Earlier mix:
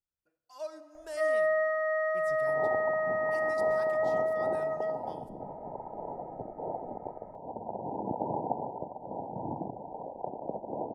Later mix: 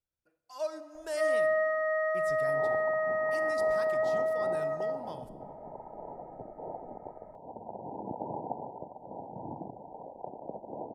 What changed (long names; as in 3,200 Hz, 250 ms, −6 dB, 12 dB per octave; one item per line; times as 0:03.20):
speech +5.0 dB
second sound −4.5 dB